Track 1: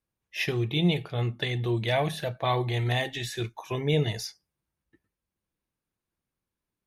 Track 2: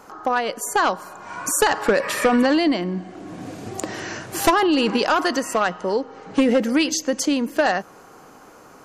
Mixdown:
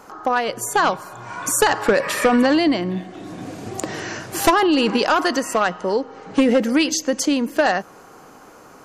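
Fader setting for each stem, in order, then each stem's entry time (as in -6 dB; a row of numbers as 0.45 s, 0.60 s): -16.0 dB, +1.5 dB; 0.00 s, 0.00 s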